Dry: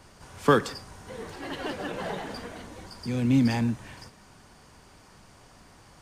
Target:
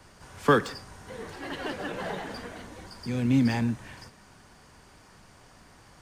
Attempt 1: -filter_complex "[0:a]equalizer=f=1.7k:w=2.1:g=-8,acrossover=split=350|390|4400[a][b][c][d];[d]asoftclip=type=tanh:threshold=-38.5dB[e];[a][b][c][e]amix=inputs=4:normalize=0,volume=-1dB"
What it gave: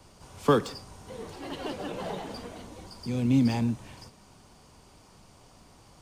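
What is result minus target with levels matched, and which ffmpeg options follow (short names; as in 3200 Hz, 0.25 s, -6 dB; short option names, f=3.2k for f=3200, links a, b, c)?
2000 Hz band -8.0 dB
-filter_complex "[0:a]equalizer=f=1.7k:w=2.1:g=2.5,acrossover=split=350|390|4400[a][b][c][d];[d]asoftclip=type=tanh:threshold=-38.5dB[e];[a][b][c][e]amix=inputs=4:normalize=0,volume=-1dB"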